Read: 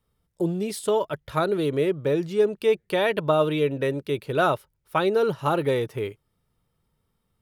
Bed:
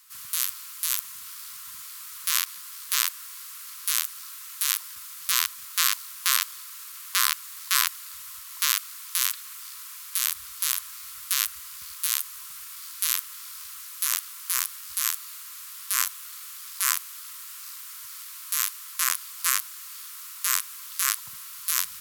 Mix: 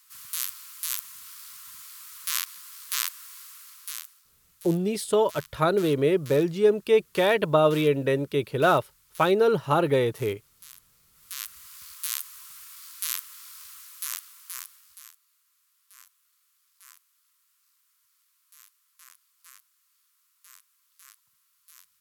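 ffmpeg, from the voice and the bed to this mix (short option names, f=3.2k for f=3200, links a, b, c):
-filter_complex "[0:a]adelay=4250,volume=1dB[a];[1:a]volume=13.5dB,afade=t=out:st=3.38:d=0.85:silence=0.11885,afade=t=in:st=11.12:d=0.66:silence=0.133352,afade=t=out:st=13.7:d=1.45:silence=0.0668344[b];[a][b]amix=inputs=2:normalize=0"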